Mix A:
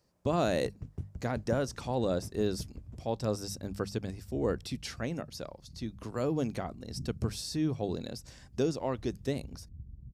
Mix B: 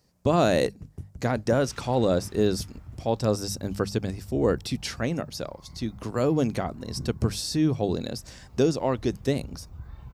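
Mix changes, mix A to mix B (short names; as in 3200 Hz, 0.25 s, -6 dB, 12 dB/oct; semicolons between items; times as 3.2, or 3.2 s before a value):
speech +7.5 dB; first sound: remove air absorption 64 m; second sound: remove ladder low-pass 310 Hz, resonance 25%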